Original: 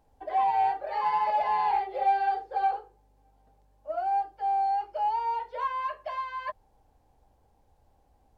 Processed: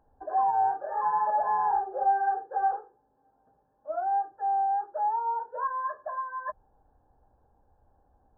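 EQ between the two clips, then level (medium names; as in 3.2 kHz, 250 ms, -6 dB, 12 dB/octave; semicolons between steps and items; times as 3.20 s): brick-wall FIR low-pass 1.8 kHz; hum notches 50/100/150/200 Hz; 0.0 dB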